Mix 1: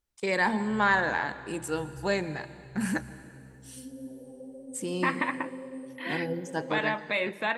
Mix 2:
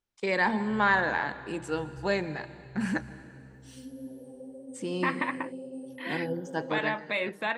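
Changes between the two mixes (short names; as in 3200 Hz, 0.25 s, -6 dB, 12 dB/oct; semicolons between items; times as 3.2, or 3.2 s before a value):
first voice: add BPF 110–5400 Hz; second voice: send off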